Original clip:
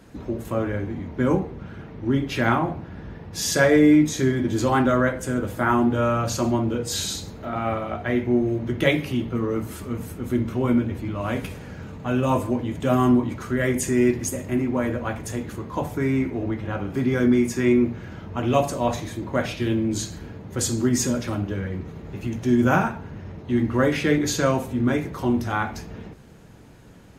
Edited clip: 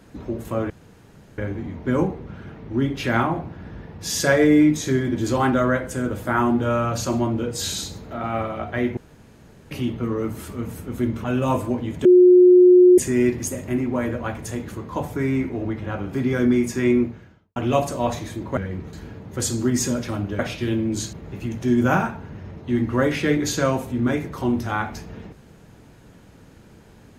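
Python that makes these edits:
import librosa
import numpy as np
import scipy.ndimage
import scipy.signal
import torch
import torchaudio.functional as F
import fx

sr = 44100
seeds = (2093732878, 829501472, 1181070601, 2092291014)

y = fx.edit(x, sr, fx.insert_room_tone(at_s=0.7, length_s=0.68),
    fx.room_tone_fill(start_s=8.29, length_s=0.74),
    fx.cut(start_s=10.56, length_s=1.49),
    fx.bleep(start_s=12.86, length_s=0.93, hz=361.0, db=-7.5),
    fx.fade_out_span(start_s=17.81, length_s=0.56, curve='qua'),
    fx.swap(start_s=19.38, length_s=0.74, other_s=21.58, other_length_s=0.36), tone=tone)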